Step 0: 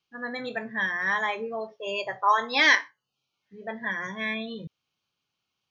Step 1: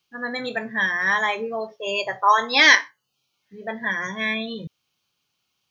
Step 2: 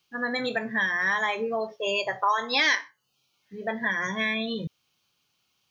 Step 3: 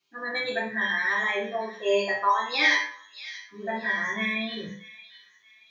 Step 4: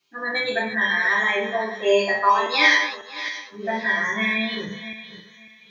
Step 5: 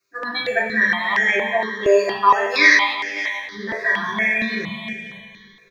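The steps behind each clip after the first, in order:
treble shelf 5.2 kHz +8.5 dB; trim +4.5 dB
compression 2.5:1, threshold -27 dBFS, peak gain reduction 12.5 dB; trim +2 dB
feedback comb 100 Hz, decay 0.22 s, harmonics all, mix 90%; feedback echo behind a high-pass 628 ms, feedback 36%, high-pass 2.9 kHz, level -12 dB; reverberation RT60 0.45 s, pre-delay 3 ms, DRR -5.5 dB; trim -4 dB
backward echo that repeats 274 ms, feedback 44%, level -12 dB; trim +5 dB
in parallel at -9.5 dB: hysteresis with a dead band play -36 dBFS; on the sum: feedback delay 176 ms, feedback 56%, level -11 dB; stepped phaser 4.3 Hz 850–3900 Hz; trim +2.5 dB

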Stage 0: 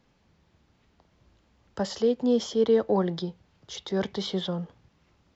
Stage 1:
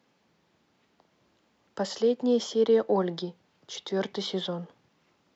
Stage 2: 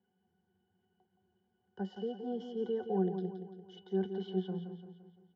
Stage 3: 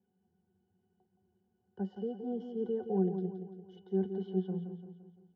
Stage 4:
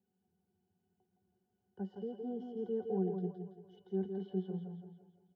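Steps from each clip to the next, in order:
high-pass 210 Hz 12 dB/octave
pitch-class resonator F#, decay 0.11 s; feedback delay 171 ms, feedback 49%, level -8.5 dB
tilt shelf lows +7 dB, about 920 Hz; trim -4 dB
feedback delay 164 ms, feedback 39%, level -6 dB; trim -4.5 dB

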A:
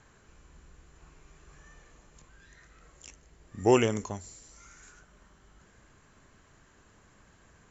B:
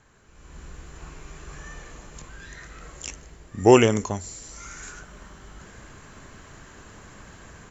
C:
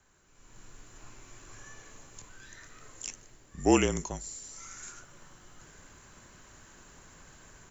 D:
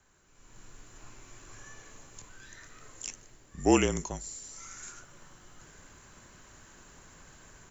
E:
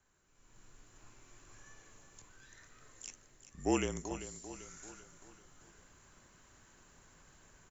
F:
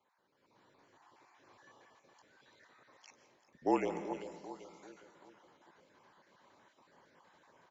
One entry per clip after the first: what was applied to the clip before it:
level rider gain up to 14 dB
treble shelf 6 kHz +11.5 dB; frequency shift -41 Hz; trim -9 dB
no audible change
feedback delay 390 ms, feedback 47%, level -12 dB; trim -8.5 dB
random holes in the spectrogram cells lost 25%; cabinet simulation 230–4400 Hz, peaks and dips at 540 Hz +5 dB, 900 Hz +8 dB, 1.4 kHz -4 dB, 2.7 kHz -6 dB; algorithmic reverb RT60 1.1 s, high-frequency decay 0.55×, pre-delay 105 ms, DRR 10 dB

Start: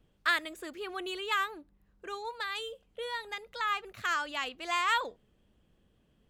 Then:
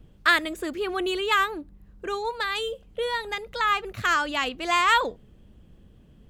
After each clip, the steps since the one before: bass shelf 330 Hz +10.5 dB; trim +7.5 dB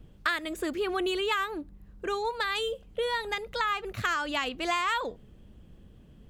compression 6:1, threshold -25 dBFS, peak gain reduction 10.5 dB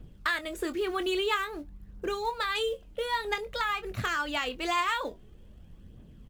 in parallel at -7.5 dB: short-mantissa float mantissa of 2-bit; on the sum: phaser 0.5 Hz, delay 3.6 ms, feedback 38%; doubling 24 ms -11 dB; trim -4.5 dB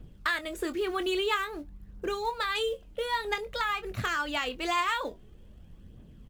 no audible change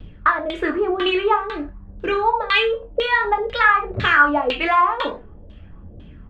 gated-style reverb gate 150 ms falling, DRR 2.5 dB; LFO low-pass saw down 2 Hz 520–3700 Hz; vibrato 0.42 Hz 9.1 cents; trim +8 dB

